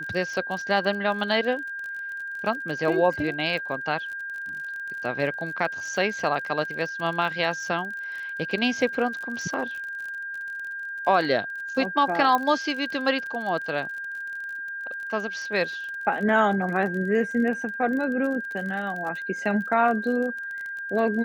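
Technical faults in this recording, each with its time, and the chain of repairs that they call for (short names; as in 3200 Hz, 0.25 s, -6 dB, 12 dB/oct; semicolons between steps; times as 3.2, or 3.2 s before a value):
crackle 36/s -33 dBFS
tone 1600 Hz -31 dBFS
12.35 pop -11 dBFS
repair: de-click; notch 1600 Hz, Q 30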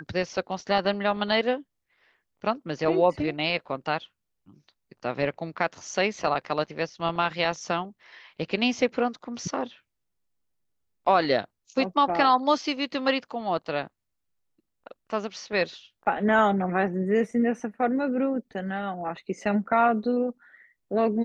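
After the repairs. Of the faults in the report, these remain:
12.35 pop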